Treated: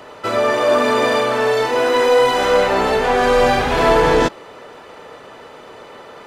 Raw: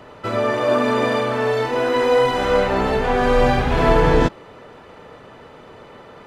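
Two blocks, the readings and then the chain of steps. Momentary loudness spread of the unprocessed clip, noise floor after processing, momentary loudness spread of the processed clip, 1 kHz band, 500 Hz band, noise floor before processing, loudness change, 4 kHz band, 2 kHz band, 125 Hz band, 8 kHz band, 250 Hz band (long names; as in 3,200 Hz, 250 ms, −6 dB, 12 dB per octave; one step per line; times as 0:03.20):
4 LU, −40 dBFS, 4 LU, +3.5 dB, +3.0 dB, −43 dBFS, +3.0 dB, +5.5 dB, +4.0 dB, −5.5 dB, can't be measured, −1.0 dB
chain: bass and treble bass −10 dB, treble +5 dB
in parallel at −7 dB: hard clipping −18.5 dBFS, distortion −9 dB
on the sum: level +1.5 dB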